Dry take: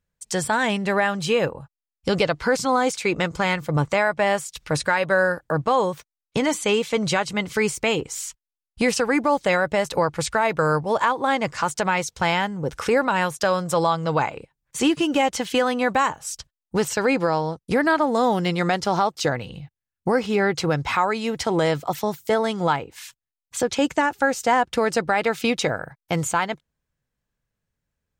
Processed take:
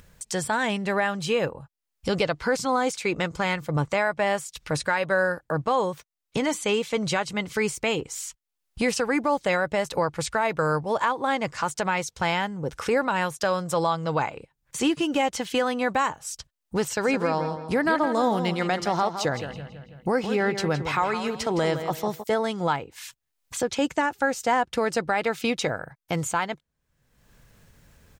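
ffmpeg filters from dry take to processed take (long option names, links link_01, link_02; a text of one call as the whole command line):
ffmpeg -i in.wav -filter_complex "[0:a]asplit=3[link_01][link_02][link_03];[link_01]afade=type=out:start_time=17.02:duration=0.02[link_04];[link_02]asplit=2[link_05][link_06];[link_06]adelay=164,lowpass=frequency=5000:poles=1,volume=-9dB,asplit=2[link_07][link_08];[link_08]adelay=164,lowpass=frequency=5000:poles=1,volume=0.34,asplit=2[link_09][link_10];[link_10]adelay=164,lowpass=frequency=5000:poles=1,volume=0.34,asplit=2[link_11][link_12];[link_12]adelay=164,lowpass=frequency=5000:poles=1,volume=0.34[link_13];[link_05][link_07][link_09][link_11][link_13]amix=inputs=5:normalize=0,afade=type=in:start_time=17.02:duration=0.02,afade=type=out:start_time=22.22:duration=0.02[link_14];[link_03]afade=type=in:start_time=22.22:duration=0.02[link_15];[link_04][link_14][link_15]amix=inputs=3:normalize=0,acompressor=mode=upward:threshold=-28dB:ratio=2.5,volume=-3.5dB" out.wav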